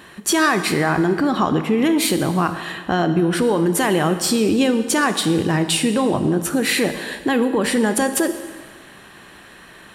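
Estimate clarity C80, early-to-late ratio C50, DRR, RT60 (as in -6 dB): 11.5 dB, 10.5 dB, 9.0 dB, 1.5 s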